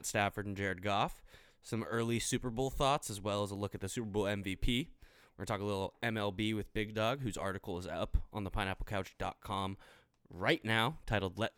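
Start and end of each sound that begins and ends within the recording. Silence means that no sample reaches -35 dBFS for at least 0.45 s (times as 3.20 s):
1.72–4.83 s
5.40–9.73 s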